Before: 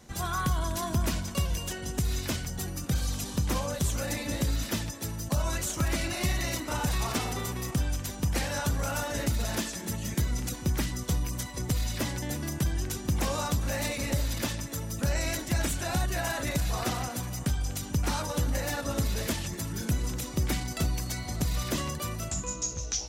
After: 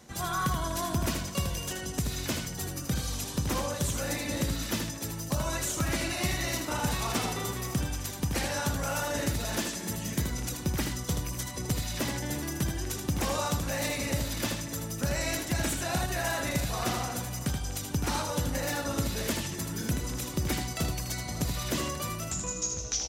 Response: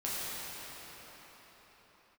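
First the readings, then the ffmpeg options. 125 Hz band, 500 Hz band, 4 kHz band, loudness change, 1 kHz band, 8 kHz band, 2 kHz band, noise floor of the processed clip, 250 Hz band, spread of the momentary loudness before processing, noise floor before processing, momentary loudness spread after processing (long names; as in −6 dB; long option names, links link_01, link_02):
−2.0 dB, +1.0 dB, +1.0 dB, −0.5 dB, +1.0 dB, +1.0 dB, +1.0 dB, −38 dBFS, 0.0 dB, 4 LU, −39 dBFS, 4 LU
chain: -af "highpass=frequency=96:poles=1,areverse,acompressor=mode=upward:threshold=-37dB:ratio=2.5,areverse,aecho=1:1:79:0.501"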